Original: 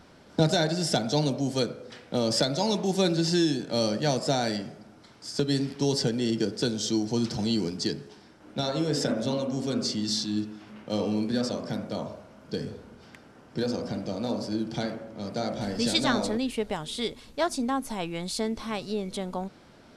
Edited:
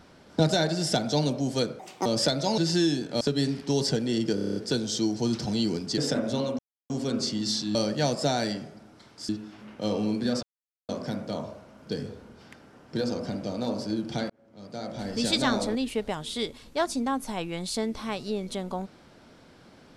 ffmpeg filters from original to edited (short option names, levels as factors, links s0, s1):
-filter_complex "[0:a]asplit=18[s0][s1][s2][s3][s4][s5][s6][s7][s8][s9][s10][s11][s12][s13][s14][s15][s16][s17];[s0]atrim=end=1.794[s18];[s1]atrim=start=1.79:end=2.2,asetpts=PTS-STARTPTS,asetrate=67473,aresample=44100[s19];[s2]atrim=start=2.196:end=2.722[s20];[s3]atrim=start=3.158:end=3.792[s21];[s4]atrim=start=5.328:end=6.502[s22];[s5]atrim=start=6.468:end=6.502[s23];[s6]atrim=start=6.468:end=6.502[s24];[s7]atrim=start=6.468:end=6.502[s25];[s8]atrim=start=6.468:end=6.502[s26];[s9]atrim=start=6.468:end=6.502[s27];[s10]atrim=start=6.468:end=6.502[s28];[s11]atrim=start=6.468:end=7.892[s29];[s12]atrim=start=8.908:end=9.52,asetpts=PTS-STARTPTS,afade=t=out:st=0.608:d=0.004:c=hsin,apad=pad_dur=0.31[s30];[s13]atrim=start=9.52:end=10.372,asetpts=PTS-STARTPTS,afade=t=in:d=0.004:c=hsin[s31];[s14]atrim=start=3.788:end=5.332[s32];[s15]atrim=start=10.368:end=11.51,asetpts=PTS-STARTPTS,afade=t=out:st=1.138:d=0.004:c=hsin,apad=pad_dur=0.46[s33];[s16]atrim=start=11.51:end=14.92,asetpts=PTS-STARTPTS,afade=t=in:d=0.004:c=hsin,afade=t=out:st=3.406:d=0.004:c=hsin[s34];[s17]atrim=start=14.92,asetpts=PTS-STARTPTS,afade=t=in:d=1.02[s35];[s18][s19]acrossfade=d=0.004:c1=hsin:c2=hsin[s36];[s36][s20]acrossfade=d=0.004:c1=hsin:c2=hsin[s37];[s37][s21]acrossfade=d=0.004:c1=hsin:c2=hsin[s38];[s38][s22]acrossfade=d=0.004:c1=hsin:c2=hsin[s39];[s39][s23]acrossfade=d=0.004:c1=hsin:c2=hsin[s40];[s40][s24]acrossfade=d=0.004:c1=hsin:c2=hsin[s41];[s41][s25]acrossfade=d=0.004:c1=hsin:c2=hsin[s42];[s42][s26]acrossfade=d=0.004:c1=hsin:c2=hsin[s43];[s43][s27]acrossfade=d=0.004:c1=hsin:c2=hsin[s44];[s44][s28]acrossfade=d=0.004:c1=hsin:c2=hsin[s45];[s45][s29]acrossfade=d=0.004:c1=hsin:c2=hsin[s46];[s30][s31]concat=n=2:v=0:a=1[s47];[s46][s47]acrossfade=d=0.004:c1=hsin:c2=hsin[s48];[s48][s32]acrossfade=d=0.004:c1=hsin:c2=hsin[s49];[s33][s34][s35]concat=n=3:v=0:a=1[s50];[s49][s50]acrossfade=d=0.004:c1=hsin:c2=hsin"